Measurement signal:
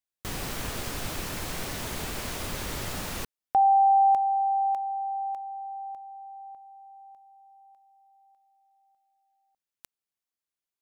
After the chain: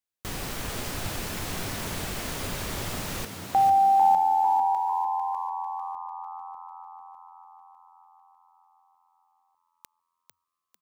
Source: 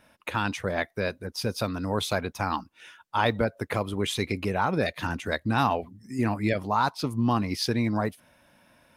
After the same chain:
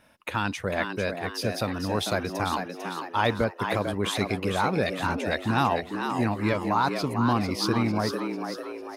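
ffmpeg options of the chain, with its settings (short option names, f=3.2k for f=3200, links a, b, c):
-filter_complex "[0:a]asplit=7[a][b][c][d][e][f][g];[b]adelay=448,afreqshift=85,volume=-6.5dB[h];[c]adelay=896,afreqshift=170,volume=-12.7dB[i];[d]adelay=1344,afreqshift=255,volume=-18.9dB[j];[e]adelay=1792,afreqshift=340,volume=-25.1dB[k];[f]adelay=2240,afreqshift=425,volume=-31.3dB[l];[g]adelay=2688,afreqshift=510,volume=-37.5dB[m];[a][h][i][j][k][l][m]amix=inputs=7:normalize=0"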